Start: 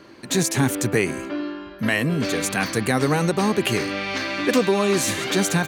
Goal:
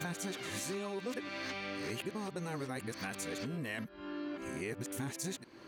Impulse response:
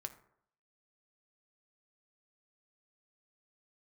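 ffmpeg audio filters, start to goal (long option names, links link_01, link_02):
-af "areverse,acompressor=threshold=-33dB:ratio=4,volume=-6dB"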